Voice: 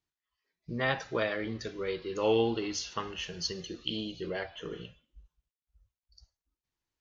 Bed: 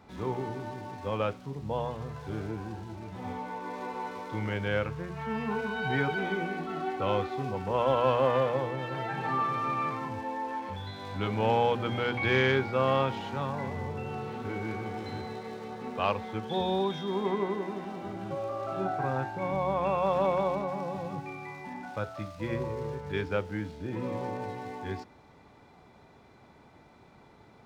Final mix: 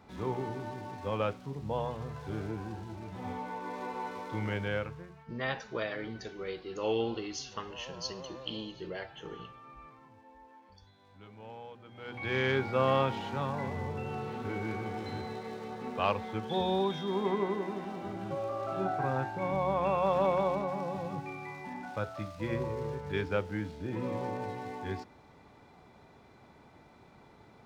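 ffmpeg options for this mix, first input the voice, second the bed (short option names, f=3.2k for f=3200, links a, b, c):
-filter_complex "[0:a]adelay=4600,volume=-4.5dB[a];[1:a]volume=19dB,afade=t=out:st=4.54:d=0.71:silence=0.1,afade=t=in:st=11.94:d=0.82:silence=0.0944061[b];[a][b]amix=inputs=2:normalize=0"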